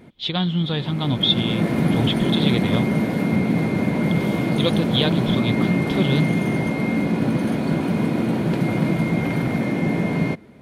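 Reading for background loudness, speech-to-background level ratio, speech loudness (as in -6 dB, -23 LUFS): -21.5 LUFS, -2.0 dB, -23.5 LUFS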